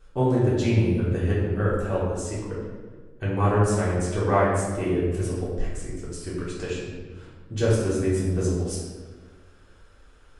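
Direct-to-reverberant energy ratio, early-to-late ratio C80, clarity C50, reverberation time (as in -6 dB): -8.5 dB, 2.0 dB, 0.0 dB, 1.5 s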